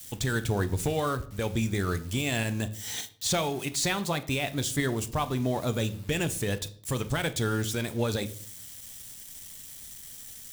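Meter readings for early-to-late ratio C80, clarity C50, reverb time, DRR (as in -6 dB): 20.5 dB, 17.0 dB, 0.55 s, 10.5 dB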